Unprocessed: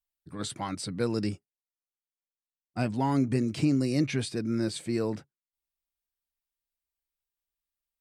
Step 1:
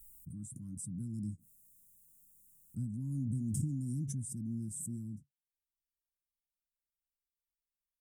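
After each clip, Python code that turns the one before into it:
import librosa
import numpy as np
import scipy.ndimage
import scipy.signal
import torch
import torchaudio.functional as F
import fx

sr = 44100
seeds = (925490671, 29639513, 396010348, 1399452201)

y = scipy.signal.sosfilt(scipy.signal.cheby2(4, 40, [420.0, 4600.0], 'bandstop', fs=sr, output='sos'), x)
y = fx.pre_swell(y, sr, db_per_s=22.0)
y = F.gain(torch.from_numpy(y), -6.5).numpy()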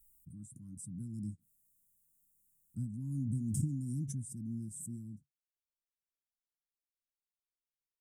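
y = fx.upward_expand(x, sr, threshold_db=-54.0, expansion=1.5)
y = F.gain(torch.from_numpy(y), 2.0).numpy()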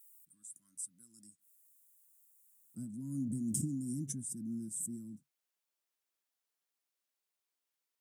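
y = fx.filter_sweep_highpass(x, sr, from_hz=1200.0, to_hz=280.0, start_s=1.07, end_s=3.09, q=0.73)
y = F.gain(torch.from_numpy(y), 6.5).numpy()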